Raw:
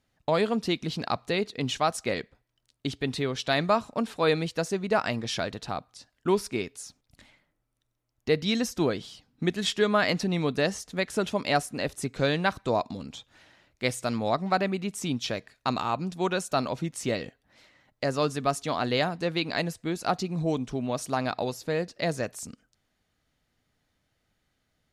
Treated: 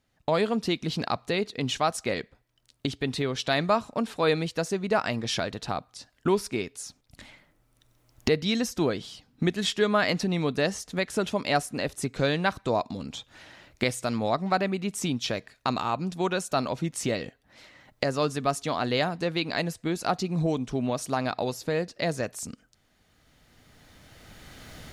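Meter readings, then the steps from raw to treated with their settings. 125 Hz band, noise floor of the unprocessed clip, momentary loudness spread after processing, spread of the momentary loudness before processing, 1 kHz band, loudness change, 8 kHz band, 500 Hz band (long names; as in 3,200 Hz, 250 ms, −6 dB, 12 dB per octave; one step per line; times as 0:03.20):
+1.0 dB, −77 dBFS, 9 LU, 9 LU, 0.0 dB, +0.5 dB, +1.5 dB, +0.5 dB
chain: camcorder AGC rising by 12 dB per second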